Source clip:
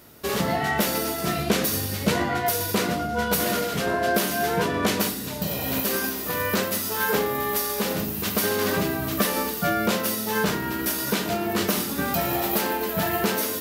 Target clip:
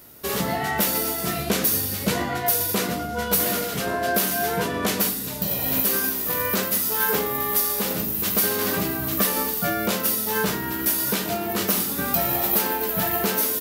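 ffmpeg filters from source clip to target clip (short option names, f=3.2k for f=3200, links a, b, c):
-filter_complex "[0:a]highshelf=f=8.9k:g=9.5,asplit=2[a][b];[b]adelay=16,volume=-12.5dB[c];[a][c]amix=inputs=2:normalize=0,volume=-1.5dB"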